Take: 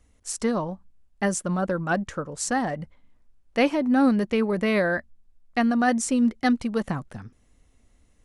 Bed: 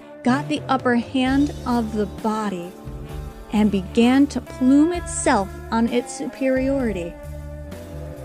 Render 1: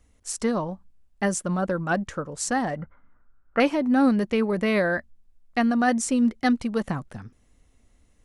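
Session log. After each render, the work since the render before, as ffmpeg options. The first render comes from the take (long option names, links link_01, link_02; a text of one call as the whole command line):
ffmpeg -i in.wav -filter_complex "[0:a]asettb=1/sr,asplit=3[link_01][link_02][link_03];[link_01]atrim=end=2.774[link_04];[link_02]atrim=start=2.77:end=3.6,asetpts=PTS-STARTPTS,afade=type=in:duration=0.004:curve=qsin,afade=type=out:start_time=0.826:duration=0.004:curve=qsin,lowpass=frequency=1400:width_type=q:width=10[link_05];[link_03]atrim=start=3.596[link_06];[link_04][link_05]acrossfade=duration=0.004:curve1=hsin:curve2=qsin[link_07];[link_07][link_06]acrossfade=duration=0.004:curve1=qsin:curve2=hsin" out.wav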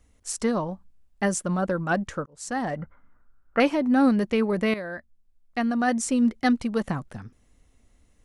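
ffmpeg -i in.wav -filter_complex "[0:a]asplit=3[link_01][link_02][link_03];[link_01]atrim=end=2.26,asetpts=PTS-STARTPTS,afade=type=out:start_time=2.256:duration=0.004:curve=hsin[link_04];[link_02]atrim=start=2.26:end=4.74,asetpts=PTS-STARTPTS,afade=type=in:duration=0.47,afade=type=out:start_time=2.476:duration=0.004:curve=hsin:silence=0.223872[link_05];[link_03]atrim=start=4.74,asetpts=PTS-STARTPTS,afade=type=in:duration=1.53:silence=0.223872[link_06];[link_04][link_05][link_06]concat=n=3:v=0:a=1" out.wav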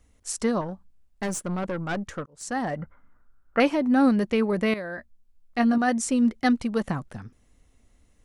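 ffmpeg -i in.wav -filter_complex "[0:a]asettb=1/sr,asplit=3[link_01][link_02][link_03];[link_01]atrim=end=0.614[link_04];[link_02]atrim=start=0.61:end=2.43,asetpts=PTS-STARTPTS,afade=type=in:duration=0.004:curve=qsin,afade=type=out:start_time=1.816:duration=0.004:curve=qsin,aeval=exprs='(tanh(15.8*val(0)+0.4)-tanh(0.4))/15.8':channel_layout=same[link_05];[link_03]atrim=start=2.426[link_06];[link_04][link_05]acrossfade=duration=0.004:curve1=hsin:curve2=qsin[link_07];[link_07][link_06]acrossfade=duration=0.004:curve1=qsin:curve2=hsin,asettb=1/sr,asplit=3[link_08][link_09][link_10];[link_08]atrim=end=4.964[link_11];[link_09]atrim=start=4.96:end=5.78,asetpts=PTS-STARTPTS,afade=type=in:duration=0.004:curve=qsin,afade=type=out:start_time=0.816:duration=0.004:curve=qsin,asplit=2[link_12][link_13];[link_13]adelay=17,volume=-3dB[link_14];[link_12][link_14]amix=inputs=2:normalize=0,atrim=end_sample=36162[link_15];[link_10]atrim=start=5.776[link_16];[link_11][link_15]acrossfade=duration=0.004:curve1=hsin:curve2=qsin[link_17];[link_17][link_16]acrossfade=duration=0.004:curve1=qsin:curve2=hsin" out.wav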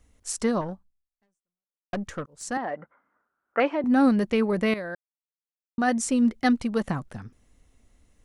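ffmpeg -i in.wav -filter_complex "[0:a]asettb=1/sr,asplit=3[link_01][link_02][link_03];[link_01]atrim=end=2.574[link_04];[link_02]atrim=start=2.57:end=3.84,asetpts=PTS-STARTPTS,afade=type=in:duration=0.004:curve=qsin,afade=type=out:start_time=1.266:duration=0.004:curve=qsin,highpass=370,lowpass=2300[link_05];[link_03]atrim=start=3.836[link_06];[link_04][link_05]acrossfade=duration=0.004:curve1=hsin:curve2=qsin[link_07];[link_07][link_06]acrossfade=duration=0.004:curve1=qsin:curve2=hsin,asplit=4[link_08][link_09][link_10][link_11];[link_08]atrim=end=1.93,asetpts=PTS-STARTPTS,afade=type=out:start_time=0.72:duration=1.21:curve=exp[link_12];[link_09]atrim=start=1.93:end=4.95,asetpts=PTS-STARTPTS,afade=type=in:duration=0.004:curve=hsin,afade=type=out:start_time=3.016:duration=0.004:curve=hsin[link_13];[link_10]atrim=start=4.95:end=5.78,asetpts=PTS-STARTPTS,volume=0[link_14];[link_11]atrim=start=5.78,asetpts=PTS-STARTPTS,afade=type=in:duration=0.004:curve=hsin[link_15];[link_12][link_13][link_14][link_15]concat=n=4:v=0:a=1" out.wav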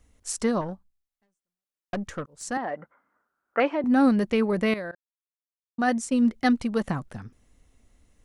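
ffmpeg -i in.wav -filter_complex "[0:a]asettb=1/sr,asplit=3[link_01][link_02][link_03];[link_01]atrim=end=4.914[link_04];[link_02]atrim=start=4.91:end=6.33,asetpts=PTS-STARTPTS,afade=type=in:duration=0.004:curve=qsin,afade=type=out:start_time=1.416:duration=0.004:curve=qsin,agate=range=-33dB:threshold=-25dB:ratio=3:release=100:detection=peak[link_05];[link_03]atrim=start=6.326[link_06];[link_04][link_05]acrossfade=duration=0.004:curve1=hsin:curve2=qsin[link_07];[link_07][link_06]acrossfade=duration=0.004:curve1=qsin:curve2=hsin" out.wav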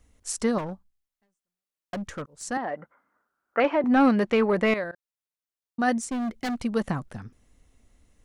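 ffmpeg -i in.wav -filter_complex "[0:a]asettb=1/sr,asplit=3[link_01][link_02][link_03];[link_01]atrim=end=0.584[link_04];[link_02]atrim=start=0.58:end=2.3,asetpts=PTS-STARTPTS,afade=type=in:duration=0.004:curve=qsin,afade=type=out:start_time=1.716:duration=0.004:curve=qsin,asoftclip=type=hard:threshold=-28dB[link_05];[link_03]atrim=start=2.296[link_06];[link_04][link_05]acrossfade=duration=0.004:curve1=hsin:curve2=qsin[link_07];[link_07][link_06]acrossfade=duration=0.004:curve1=qsin:curve2=hsin,asettb=1/sr,asplit=3[link_08][link_09][link_10];[link_08]atrim=end=3.644[link_11];[link_09]atrim=start=3.64:end=4.84,asetpts=PTS-STARTPTS,afade=type=in:duration=0.004:curve=qsin,afade=type=out:start_time=1.196:duration=0.004:curve=qsin,asplit=2[link_12][link_13];[link_13]highpass=frequency=720:poles=1,volume=14dB,asoftclip=type=tanh:threshold=-10dB[link_14];[link_12][link_14]amix=inputs=2:normalize=0,lowpass=frequency=2000:poles=1,volume=-6dB[link_15];[link_10]atrim=start=4.836[link_16];[link_11][link_15]acrossfade=duration=0.004:curve1=hsin:curve2=qsin[link_17];[link_17][link_16]acrossfade=duration=0.004:curve1=qsin:curve2=hsin,asettb=1/sr,asplit=3[link_18][link_19][link_20];[link_18]atrim=end=5.984[link_21];[link_19]atrim=start=5.98:end=6.65,asetpts=PTS-STARTPTS,afade=type=in:duration=0.004:curve=qsin,afade=type=out:start_time=0.666:duration=0.004:curve=qsin,asoftclip=type=hard:threshold=-26.5dB[link_22];[link_20]atrim=start=6.646[link_23];[link_21][link_22]acrossfade=duration=0.004:curve1=hsin:curve2=qsin[link_24];[link_24][link_23]acrossfade=duration=0.004:curve1=qsin:curve2=hsin" out.wav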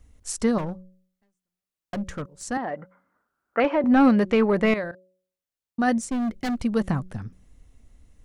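ffmpeg -i in.wav -af "lowshelf=frequency=190:gain=8.5,bandreject=frequency=184.9:width_type=h:width=4,bandreject=frequency=369.8:width_type=h:width=4,bandreject=frequency=554.7:width_type=h:width=4" out.wav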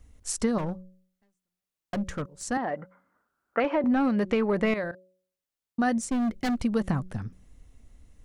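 ffmpeg -i in.wav -af "acompressor=threshold=-21dB:ratio=6" out.wav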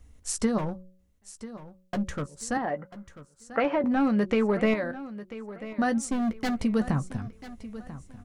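ffmpeg -i in.wav -filter_complex "[0:a]asplit=2[link_01][link_02];[link_02]adelay=14,volume=-11dB[link_03];[link_01][link_03]amix=inputs=2:normalize=0,aecho=1:1:991|1982|2973:0.178|0.0533|0.016" out.wav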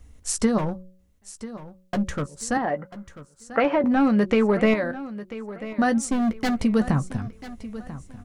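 ffmpeg -i in.wav -af "volume=4.5dB" out.wav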